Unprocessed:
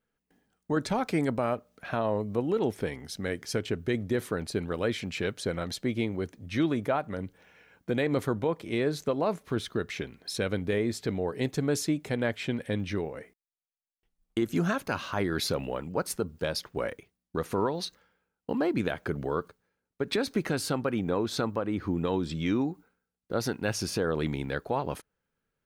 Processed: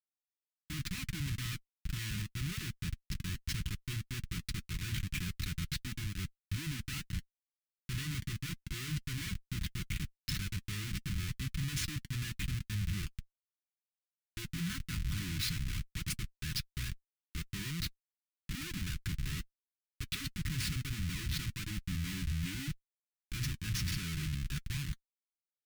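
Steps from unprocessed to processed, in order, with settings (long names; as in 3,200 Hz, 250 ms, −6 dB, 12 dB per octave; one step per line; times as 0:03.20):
comparator with hysteresis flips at −31.5 dBFS
Chebyshev band-stop filter 160–2,200 Hz, order 2
notch comb filter 230 Hz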